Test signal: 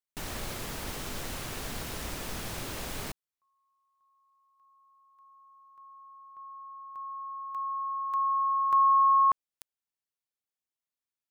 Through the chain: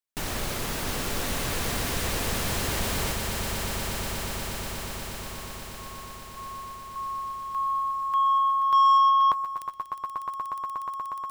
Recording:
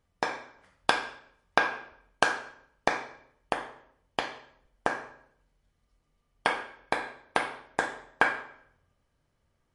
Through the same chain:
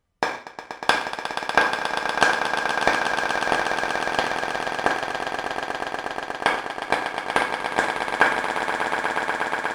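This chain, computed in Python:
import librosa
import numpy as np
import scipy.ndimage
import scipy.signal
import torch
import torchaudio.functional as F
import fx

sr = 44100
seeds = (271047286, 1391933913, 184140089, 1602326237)

y = fx.echo_swell(x, sr, ms=120, loudest=8, wet_db=-10.0)
y = fx.leveller(y, sr, passes=1)
y = F.gain(torch.from_numpy(y), 2.5).numpy()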